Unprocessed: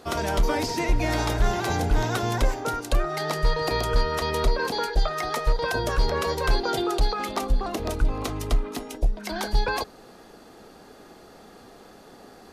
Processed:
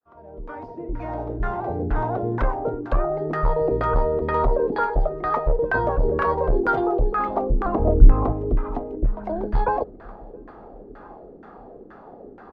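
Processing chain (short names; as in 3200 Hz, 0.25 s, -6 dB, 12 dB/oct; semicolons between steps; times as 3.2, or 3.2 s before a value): opening faded in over 3.11 s; hard clip -16.5 dBFS, distortion -18 dB; 7.65–8.32 tilt -2.5 dB/oct; feedback echo 0.68 s, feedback 54%, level -23.5 dB; LFO low-pass saw down 2.1 Hz 310–1600 Hz; 0.62–1.43 high shelf 6300 Hz +8 dB; gain +2 dB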